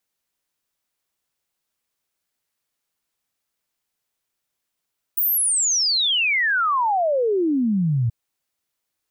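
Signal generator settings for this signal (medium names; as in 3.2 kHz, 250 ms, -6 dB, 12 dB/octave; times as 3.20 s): log sweep 16 kHz -> 110 Hz 2.93 s -17 dBFS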